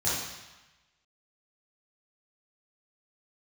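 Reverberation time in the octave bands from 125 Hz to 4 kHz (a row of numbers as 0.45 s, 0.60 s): 1.1 s, 1.0 s, 0.95 s, 1.2 s, 1.2 s, 1.1 s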